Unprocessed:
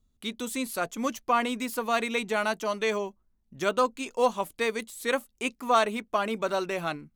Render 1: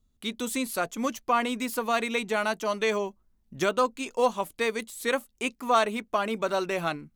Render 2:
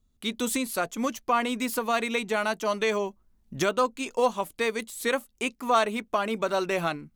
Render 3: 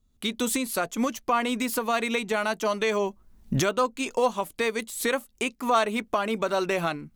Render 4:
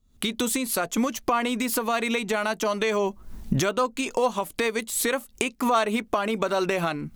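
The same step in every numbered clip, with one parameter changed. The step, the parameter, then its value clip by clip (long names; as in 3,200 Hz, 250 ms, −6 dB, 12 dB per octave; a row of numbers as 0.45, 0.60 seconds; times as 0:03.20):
camcorder AGC, rising by: 5.2, 13, 35, 88 dB per second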